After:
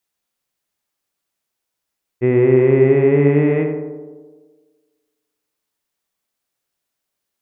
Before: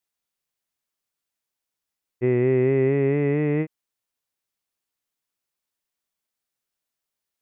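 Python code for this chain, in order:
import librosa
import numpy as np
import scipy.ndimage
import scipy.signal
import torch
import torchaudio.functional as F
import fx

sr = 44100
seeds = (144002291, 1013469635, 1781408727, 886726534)

y = fx.echo_tape(x, sr, ms=84, feedback_pct=76, wet_db=-3, lp_hz=1400.0, drive_db=8.0, wow_cents=7)
y = y * librosa.db_to_amplitude(5.5)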